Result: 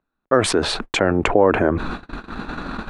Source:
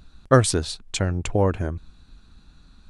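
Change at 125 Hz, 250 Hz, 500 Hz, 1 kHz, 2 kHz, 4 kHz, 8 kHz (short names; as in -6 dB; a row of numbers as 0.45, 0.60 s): -4.5, +5.0, +6.0, +6.0, +8.0, +6.0, -1.0 dB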